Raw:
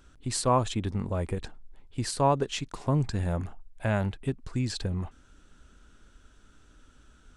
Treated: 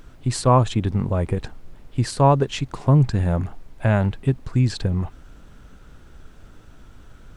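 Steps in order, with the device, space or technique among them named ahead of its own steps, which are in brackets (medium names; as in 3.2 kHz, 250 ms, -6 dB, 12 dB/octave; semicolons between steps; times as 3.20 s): car interior (peaking EQ 130 Hz +5.5 dB 0.59 oct; treble shelf 3.7 kHz -7 dB; brown noise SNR 23 dB); trim +7 dB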